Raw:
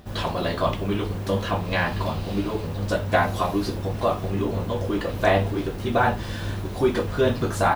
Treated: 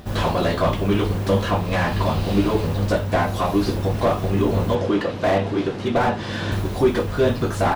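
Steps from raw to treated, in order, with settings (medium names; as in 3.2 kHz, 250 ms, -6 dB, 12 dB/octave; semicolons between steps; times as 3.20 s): 4.75–6.52 s: band-pass 130–5700 Hz; gain riding within 4 dB 0.5 s; slew-rate limiter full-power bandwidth 76 Hz; trim +4.5 dB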